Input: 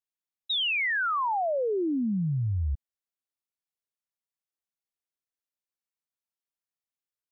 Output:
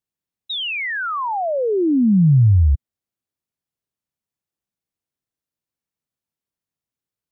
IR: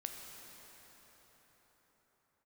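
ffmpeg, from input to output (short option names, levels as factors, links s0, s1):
-af "equalizer=f=120:w=0.33:g=13.5,volume=1.26"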